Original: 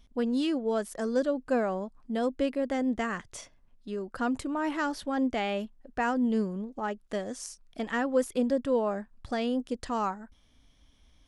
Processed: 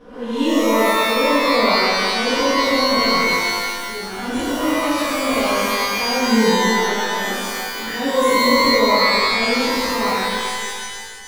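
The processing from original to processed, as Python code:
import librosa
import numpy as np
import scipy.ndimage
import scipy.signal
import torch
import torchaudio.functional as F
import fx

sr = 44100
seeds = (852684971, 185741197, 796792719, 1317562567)

y = fx.spec_swells(x, sr, rise_s=0.51)
y = fx.transient(y, sr, attack_db=-11, sustain_db=3)
y = fx.env_flanger(y, sr, rest_ms=9.5, full_db=-28.0)
y = fx.fixed_phaser(y, sr, hz=1600.0, stages=4, at=(7.37, 7.89))
y = fx.rev_shimmer(y, sr, seeds[0], rt60_s=1.8, semitones=12, shimmer_db=-2, drr_db=-7.5)
y = y * 10.0 ** (1.5 / 20.0)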